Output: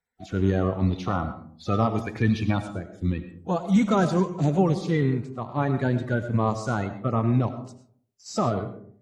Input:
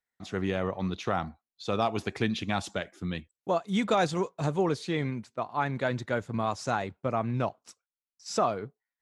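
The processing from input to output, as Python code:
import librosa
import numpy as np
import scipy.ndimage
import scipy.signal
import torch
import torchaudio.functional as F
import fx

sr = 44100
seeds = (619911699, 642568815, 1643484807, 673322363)

y = fx.spec_quant(x, sr, step_db=30)
y = fx.low_shelf(y, sr, hz=300.0, db=7.0)
y = fx.hpss(y, sr, part='percussive', gain_db=-8)
y = fx.peak_eq(y, sr, hz=fx.line((2.6, 4600.0), (3.04, 1300.0)), db=-11.0, octaves=2.5, at=(2.6, 3.04), fade=0.02)
y = fx.rev_freeverb(y, sr, rt60_s=0.58, hf_ratio=0.35, predelay_ms=60, drr_db=10.0)
y = y * 10.0 ** (5.0 / 20.0)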